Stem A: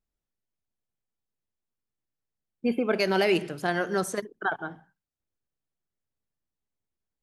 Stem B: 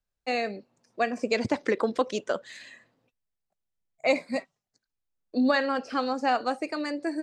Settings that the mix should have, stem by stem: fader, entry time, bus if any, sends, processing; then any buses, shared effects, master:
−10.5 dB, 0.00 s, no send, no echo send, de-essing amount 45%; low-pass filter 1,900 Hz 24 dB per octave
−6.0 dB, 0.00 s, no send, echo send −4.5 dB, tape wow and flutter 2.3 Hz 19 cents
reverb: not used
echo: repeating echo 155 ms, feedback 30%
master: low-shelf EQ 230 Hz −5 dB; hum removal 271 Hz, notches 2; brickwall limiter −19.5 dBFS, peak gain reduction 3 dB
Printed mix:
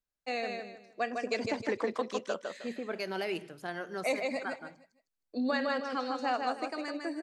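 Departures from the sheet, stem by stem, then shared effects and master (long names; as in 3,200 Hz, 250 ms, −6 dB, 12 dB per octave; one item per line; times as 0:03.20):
stem A: missing low-pass filter 1,900 Hz 24 dB per octave
master: missing hum removal 271 Hz, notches 2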